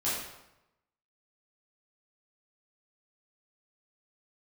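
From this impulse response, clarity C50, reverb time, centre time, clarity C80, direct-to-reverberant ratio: 0.0 dB, 0.90 s, 67 ms, 3.5 dB, −10.5 dB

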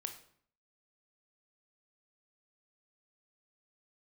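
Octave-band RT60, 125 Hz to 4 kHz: 0.70, 0.70, 0.60, 0.60, 0.50, 0.45 seconds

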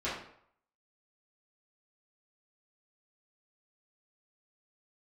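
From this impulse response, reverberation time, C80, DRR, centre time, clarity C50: 0.65 s, 7.0 dB, −11.5 dB, 46 ms, 3.0 dB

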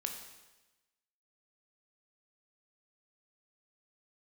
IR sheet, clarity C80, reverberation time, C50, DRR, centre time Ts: 8.0 dB, 1.1 s, 6.0 dB, 3.0 dB, 31 ms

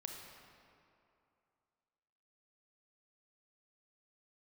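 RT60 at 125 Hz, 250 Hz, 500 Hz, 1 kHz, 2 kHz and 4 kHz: 2.5, 2.5, 2.6, 2.7, 2.1, 1.6 seconds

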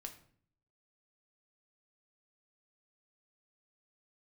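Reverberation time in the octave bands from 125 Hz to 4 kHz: 0.85, 0.80, 0.60, 0.50, 0.45, 0.40 seconds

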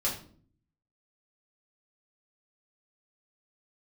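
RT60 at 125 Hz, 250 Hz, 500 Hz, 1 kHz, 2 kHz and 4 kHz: 0.95, 0.80, 0.60, 0.40, 0.35, 0.35 seconds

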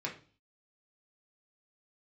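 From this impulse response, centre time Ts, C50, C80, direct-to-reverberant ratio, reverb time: 18 ms, 10.0 dB, 16.0 dB, −2.0 dB, 0.40 s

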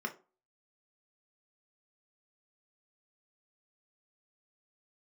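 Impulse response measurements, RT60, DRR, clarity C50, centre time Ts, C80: 0.35 s, 2.5 dB, 15.0 dB, 8 ms, 21.0 dB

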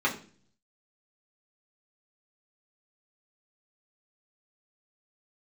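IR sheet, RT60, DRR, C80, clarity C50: 0.45 s, −4.5 dB, 16.0 dB, 11.5 dB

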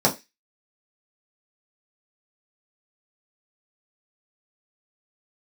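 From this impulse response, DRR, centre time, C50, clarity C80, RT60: −4.0 dB, 13 ms, 16.5 dB, 23.0 dB, 0.20 s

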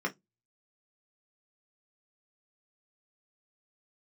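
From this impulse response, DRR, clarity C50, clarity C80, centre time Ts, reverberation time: −0.5 dB, 22.5 dB, 36.5 dB, 9 ms, 0.15 s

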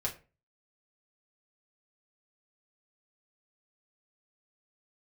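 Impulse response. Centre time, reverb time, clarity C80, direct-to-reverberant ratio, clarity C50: 13 ms, 0.35 s, 18.5 dB, −3.5 dB, 12.5 dB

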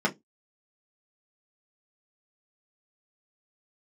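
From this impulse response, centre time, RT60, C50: 10 ms, 0.15 s, 22.0 dB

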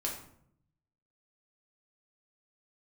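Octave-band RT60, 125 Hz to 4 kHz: 1.2, 0.95, 0.70, 0.60, 0.50, 0.40 seconds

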